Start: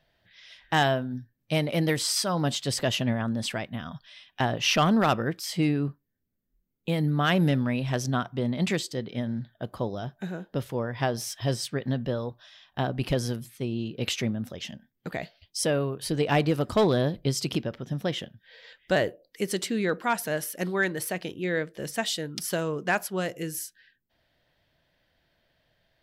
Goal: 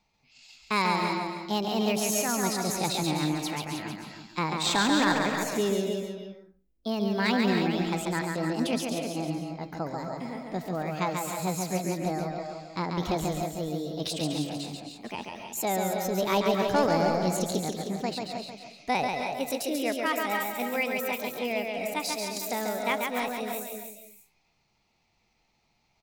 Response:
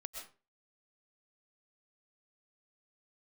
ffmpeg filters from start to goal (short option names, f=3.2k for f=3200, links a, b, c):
-filter_complex "[0:a]asetrate=58866,aresample=44100,atempo=0.749154,aecho=1:1:313:0.355,asplit=2[a][b];[1:a]atrim=start_sample=2205,adelay=139[c];[b][c]afir=irnorm=-1:irlink=0,volume=1dB[d];[a][d]amix=inputs=2:normalize=0,volume=-3.5dB"